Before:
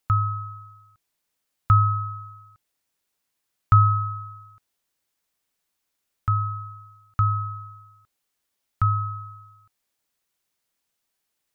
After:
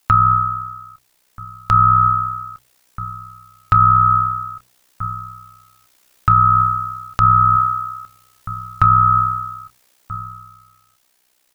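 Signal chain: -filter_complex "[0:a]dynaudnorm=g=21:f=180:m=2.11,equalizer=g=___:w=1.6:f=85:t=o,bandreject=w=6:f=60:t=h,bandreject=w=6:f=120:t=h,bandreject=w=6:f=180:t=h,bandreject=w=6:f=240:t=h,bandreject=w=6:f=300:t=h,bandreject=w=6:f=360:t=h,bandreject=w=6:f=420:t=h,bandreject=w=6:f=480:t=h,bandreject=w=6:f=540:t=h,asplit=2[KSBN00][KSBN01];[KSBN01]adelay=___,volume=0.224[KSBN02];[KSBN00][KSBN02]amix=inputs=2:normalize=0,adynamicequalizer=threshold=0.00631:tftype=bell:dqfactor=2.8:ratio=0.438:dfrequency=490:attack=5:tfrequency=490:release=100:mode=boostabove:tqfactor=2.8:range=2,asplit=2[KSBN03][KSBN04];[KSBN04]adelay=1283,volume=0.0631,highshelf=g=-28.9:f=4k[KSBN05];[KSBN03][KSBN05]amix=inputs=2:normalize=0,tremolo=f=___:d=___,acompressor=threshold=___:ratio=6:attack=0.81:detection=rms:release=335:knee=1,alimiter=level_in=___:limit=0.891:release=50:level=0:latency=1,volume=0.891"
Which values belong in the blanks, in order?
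-7, 25, 63, 0.75, 0.0631, 10.6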